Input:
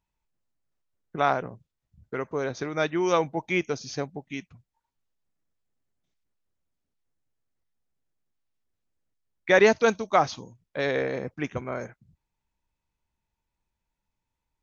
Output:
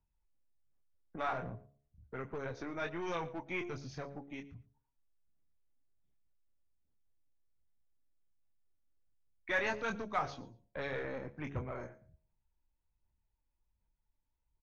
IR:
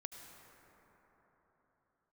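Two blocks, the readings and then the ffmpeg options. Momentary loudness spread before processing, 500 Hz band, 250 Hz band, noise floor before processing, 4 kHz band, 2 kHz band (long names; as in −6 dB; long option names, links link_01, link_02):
19 LU, −16.0 dB, −13.0 dB, −85 dBFS, −13.5 dB, −10.5 dB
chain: -filter_complex "[0:a]aphaser=in_gain=1:out_gain=1:delay=3.7:decay=0.43:speed=1.3:type=sinusoidal,bandreject=frequency=70.37:width_type=h:width=4,bandreject=frequency=140.74:width_type=h:width=4,bandreject=frequency=211.11:width_type=h:width=4,bandreject=frequency=281.48:width_type=h:width=4,bandreject=frequency=351.85:width_type=h:width=4,bandreject=frequency=422.22:width_type=h:width=4,bandreject=frequency=492.59:width_type=h:width=4,bandreject=frequency=562.96:width_type=h:width=4,bandreject=frequency=633.33:width_type=h:width=4,bandreject=frequency=703.7:width_type=h:width=4,acrossover=split=100|930[link_01][link_02][link_03];[link_01]acontrast=38[link_04];[link_02]aeval=exprs='(tanh(44.7*val(0)+0.35)-tanh(0.35))/44.7':channel_layout=same[link_05];[link_03]flanger=delay=22.5:depth=3.1:speed=0.38[link_06];[link_04][link_05][link_06]amix=inputs=3:normalize=0,lowpass=frequency=2100:poles=1,aecho=1:1:115|230:0.1|0.015,volume=-6dB"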